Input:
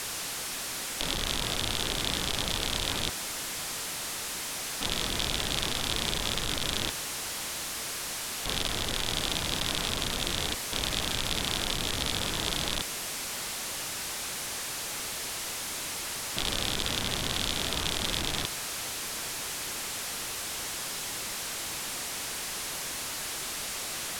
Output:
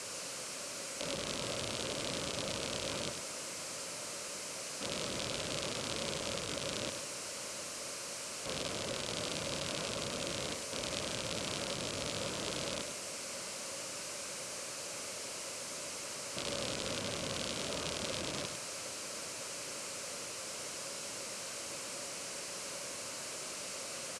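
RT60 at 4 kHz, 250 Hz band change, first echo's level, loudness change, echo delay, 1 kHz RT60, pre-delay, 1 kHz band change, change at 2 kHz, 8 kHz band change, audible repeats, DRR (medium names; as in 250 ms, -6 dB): no reverb, -5.5 dB, -8.0 dB, -8.0 dB, 101 ms, no reverb, no reverb, -7.5 dB, -8.0 dB, -6.5 dB, 1, no reverb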